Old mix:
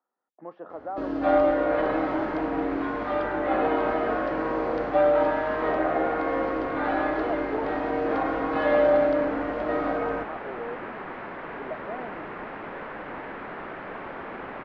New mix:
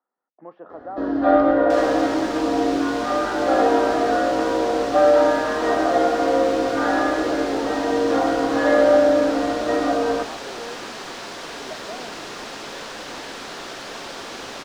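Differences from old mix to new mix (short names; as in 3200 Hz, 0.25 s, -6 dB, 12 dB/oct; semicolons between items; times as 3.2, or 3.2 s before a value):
second sound: remove LPF 1900 Hz 24 dB/oct; reverb: on, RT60 0.45 s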